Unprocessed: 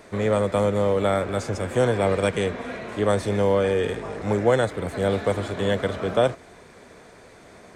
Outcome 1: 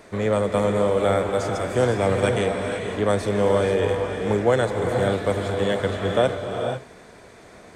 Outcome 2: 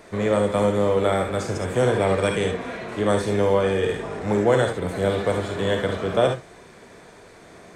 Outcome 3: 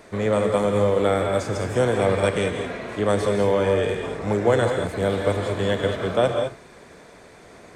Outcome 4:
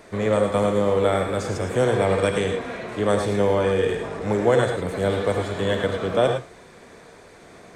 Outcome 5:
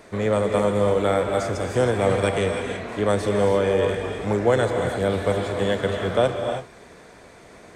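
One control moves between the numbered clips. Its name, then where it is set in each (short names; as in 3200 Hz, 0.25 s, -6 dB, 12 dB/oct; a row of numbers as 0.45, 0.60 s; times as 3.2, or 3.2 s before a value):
non-linear reverb, gate: 520, 90, 230, 130, 350 ms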